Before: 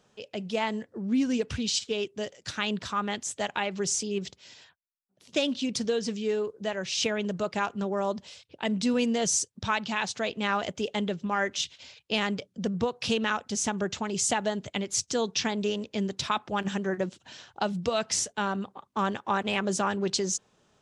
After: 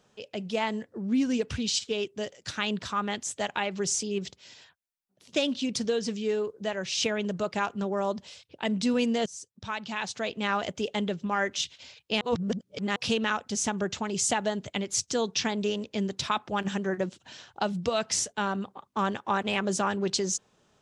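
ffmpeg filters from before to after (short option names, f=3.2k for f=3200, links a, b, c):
-filter_complex "[0:a]asplit=4[a][b][c][d];[a]atrim=end=9.26,asetpts=PTS-STARTPTS,afade=t=out:st=9.256:d=0.004:c=hsin:silence=0.0630957[e];[b]atrim=start=9.26:end=12.212,asetpts=PTS-STARTPTS,afade=t=in:d=1.56:c=qsin:silence=0.0630957[f];[c]atrim=start=12.208:end=12.962,asetpts=PTS-STARTPTS,areverse[g];[d]atrim=start=12.958[h];[e][f]concat=n=2:v=0:a=1[i];[i][g]acrossfade=d=0.004:c1=hsin:c2=hsin[j];[j][h]acrossfade=d=0.004:c1=hsin:c2=hsin"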